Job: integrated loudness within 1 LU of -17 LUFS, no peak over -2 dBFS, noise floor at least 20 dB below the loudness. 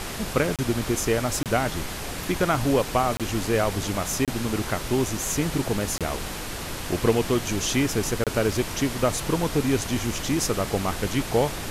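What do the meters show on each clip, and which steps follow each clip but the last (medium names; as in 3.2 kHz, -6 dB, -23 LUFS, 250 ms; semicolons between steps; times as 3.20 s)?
dropouts 6; longest dropout 27 ms; noise floor -33 dBFS; noise floor target -45 dBFS; loudness -25.0 LUFS; peak level -8.0 dBFS; loudness target -17.0 LUFS
-> interpolate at 0.56/1.43/3.17/4.25/5.98/8.24 s, 27 ms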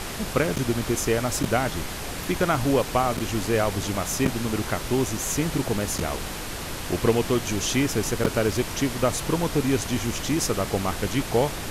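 dropouts 0; noise floor -33 dBFS; noise floor target -45 dBFS
-> noise print and reduce 12 dB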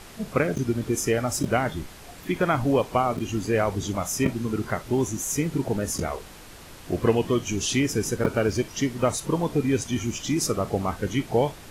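noise floor -45 dBFS; noise floor target -46 dBFS
-> noise print and reduce 6 dB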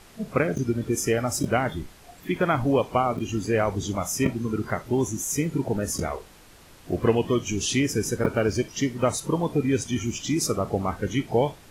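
noise floor -51 dBFS; loudness -25.5 LUFS; peak level -7.0 dBFS; loudness target -17.0 LUFS
-> trim +8.5 dB; peak limiter -2 dBFS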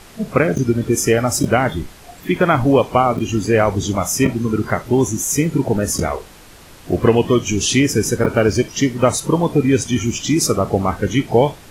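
loudness -17.5 LUFS; peak level -2.0 dBFS; noise floor -42 dBFS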